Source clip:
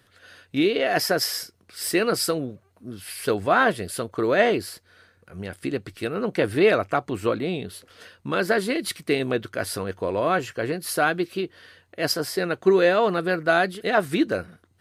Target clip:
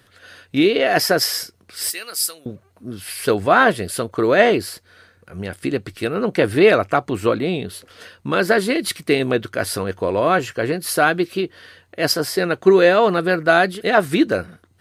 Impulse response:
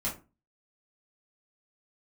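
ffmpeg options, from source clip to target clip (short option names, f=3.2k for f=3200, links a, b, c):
-filter_complex "[0:a]asettb=1/sr,asplit=3[a][b][c];[a]atrim=end=1.904[d];[b]atrim=start=1.9:end=2.46,asetpts=PTS-STARTPTS,afade=t=in:d=0.004:c=qsin,afade=t=out:st=0.556:d=0.004:c=qsin,aderivative[e];[c]atrim=start=2.456[f];[d][e]acrossfade=d=0.004:c1=hsin:c2=qsin[g];[g][f]acrossfade=d=0.004:c1=qsin:c2=hsin,volume=5.5dB"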